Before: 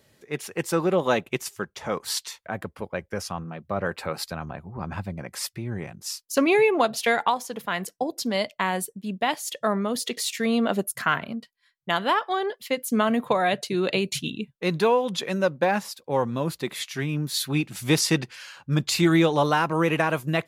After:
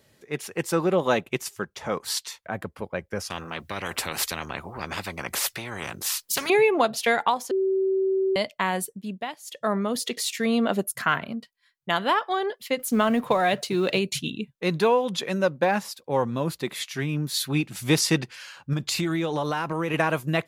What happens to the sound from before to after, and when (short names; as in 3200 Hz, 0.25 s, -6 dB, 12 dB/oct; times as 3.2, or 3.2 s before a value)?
3.3–6.5 spectral compressor 4:1
7.51–8.36 bleep 383 Hz -20 dBFS
8.99–9.74 dip -14.5 dB, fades 0.36 s linear
12.79–13.99 G.711 law mismatch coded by mu
18.73–19.94 compressor, threshold -22 dBFS